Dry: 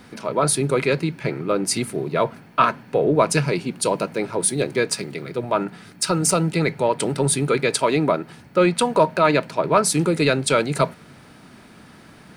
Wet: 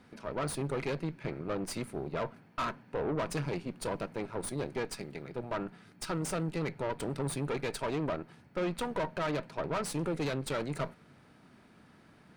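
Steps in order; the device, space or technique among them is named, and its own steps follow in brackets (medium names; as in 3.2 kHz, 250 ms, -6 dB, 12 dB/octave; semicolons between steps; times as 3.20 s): tube preamp driven hard (valve stage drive 21 dB, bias 0.8; treble shelf 3.8 kHz -7 dB); trim -7.5 dB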